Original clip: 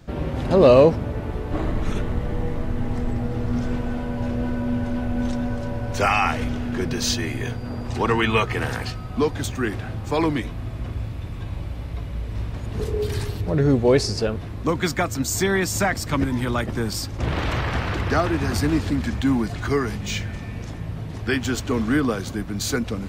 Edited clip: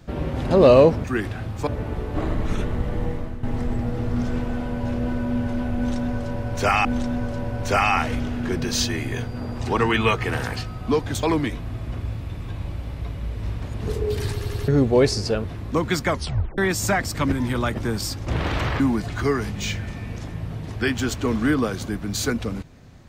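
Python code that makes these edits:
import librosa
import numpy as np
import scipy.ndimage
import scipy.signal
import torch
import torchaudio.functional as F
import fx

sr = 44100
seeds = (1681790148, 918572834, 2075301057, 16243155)

y = fx.edit(x, sr, fx.fade_out_to(start_s=2.44, length_s=0.36, floor_db=-11.0),
    fx.repeat(start_s=5.14, length_s=1.08, count=2),
    fx.move(start_s=9.52, length_s=0.63, to_s=1.04),
    fx.stutter_over(start_s=13.24, slice_s=0.09, count=4),
    fx.tape_stop(start_s=14.99, length_s=0.51),
    fx.cut(start_s=17.72, length_s=1.54), tone=tone)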